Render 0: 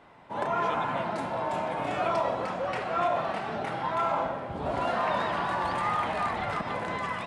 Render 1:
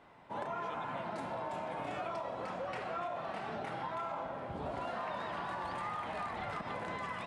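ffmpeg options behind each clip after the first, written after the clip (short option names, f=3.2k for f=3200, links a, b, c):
-af "acompressor=threshold=-31dB:ratio=6,volume=-5dB"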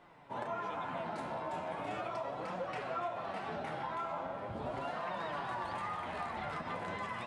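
-af "flanger=delay=5.4:depth=8.4:regen=42:speed=0.39:shape=triangular,volume=4dB"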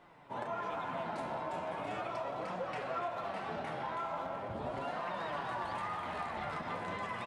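-filter_complex "[0:a]asplit=2[a][b];[b]adelay=210,highpass=300,lowpass=3.4k,asoftclip=type=hard:threshold=-36.5dB,volume=-7dB[c];[a][c]amix=inputs=2:normalize=0"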